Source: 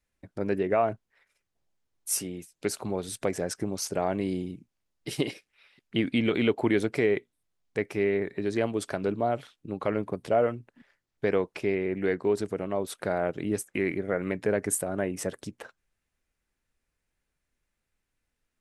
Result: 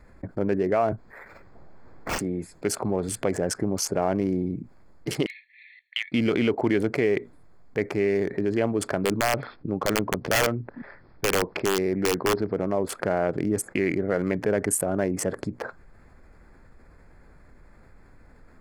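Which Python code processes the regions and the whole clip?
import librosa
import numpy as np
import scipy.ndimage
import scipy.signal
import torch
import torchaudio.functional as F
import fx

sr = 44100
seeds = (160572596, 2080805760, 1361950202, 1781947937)

y = fx.chain(x, sr, fx.resample_bad(factor=4, down='none', up='hold'),
    fx.band_squash(depth_pct=40), at=(0.92, 2.19))
y = fx.chain(y, sr, fx.brickwall_bandpass(low_hz=1700.0, high_hz=4400.0),
    fx.upward_expand(threshold_db=-49.0, expansion=1.5), at=(5.26, 6.12))
y = fx.chain(y, sr, fx.brickwall_lowpass(high_hz=5400.0),
    fx.overflow_wrap(gain_db=17.5), at=(8.99, 12.6))
y = fx.wiener(y, sr, points=15)
y = fx.notch(y, sr, hz=3800.0, q=7.4)
y = fx.env_flatten(y, sr, amount_pct=50)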